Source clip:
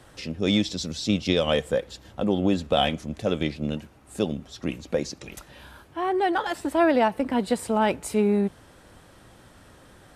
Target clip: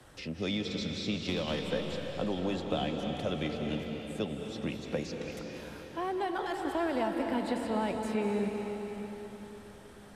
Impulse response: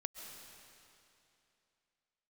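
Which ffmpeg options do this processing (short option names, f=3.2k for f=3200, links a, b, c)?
-filter_complex "[0:a]acrossover=split=83|210|610|4400[a][b][c][d][e];[a]acompressor=threshold=-52dB:ratio=4[f];[b]acompressor=threshold=-35dB:ratio=4[g];[c]acompressor=threshold=-33dB:ratio=4[h];[d]acompressor=threshold=-32dB:ratio=4[i];[e]acompressor=threshold=-53dB:ratio=4[j];[f][g][h][i][j]amix=inputs=5:normalize=0,asettb=1/sr,asplit=3[k][l][m];[k]atrim=end=1.144[n];[l]atrim=start=1.14:end=1.73,asetpts=PTS-STARTPTS,afade=t=in:d=0.004:c=qsin,afade=t=out:st=0.586:d=0.004:c=qsin,aeval=exprs='clip(val(0),-1,0.0447)':c=same[o];[m]atrim=start=1.726[p];[n][o]acrossfade=d=0.004:c1=hsin:c2=qsin[q];[q][p]acrossfade=d=0.004:c1=qsin:c2=hsin[r];[1:a]atrim=start_sample=2205,asetrate=30870,aresample=44100[s];[r][s]afir=irnorm=-1:irlink=0,volume=-2.5dB"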